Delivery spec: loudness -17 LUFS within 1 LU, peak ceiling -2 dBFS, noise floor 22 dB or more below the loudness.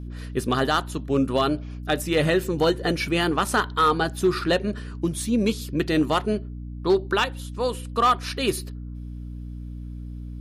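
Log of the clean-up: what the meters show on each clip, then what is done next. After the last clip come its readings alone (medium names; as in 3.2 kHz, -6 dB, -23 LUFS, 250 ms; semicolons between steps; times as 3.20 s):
clipped samples 0.3%; clipping level -12.5 dBFS; hum 60 Hz; highest harmonic 300 Hz; hum level -32 dBFS; loudness -24.0 LUFS; peak level -12.5 dBFS; loudness target -17.0 LUFS
-> clip repair -12.5 dBFS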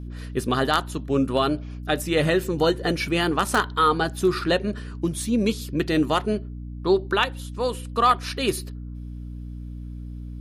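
clipped samples 0.0%; hum 60 Hz; highest harmonic 300 Hz; hum level -32 dBFS
-> de-hum 60 Hz, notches 5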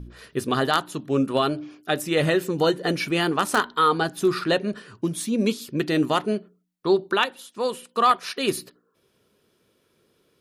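hum not found; loudness -24.0 LUFS; peak level -4.0 dBFS; loudness target -17.0 LUFS
-> trim +7 dB; peak limiter -2 dBFS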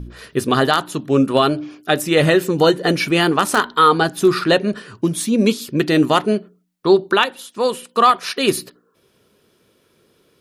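loudness -17.0 LUFS; peak level -2.0 dBFS; noise floor -61 dBFS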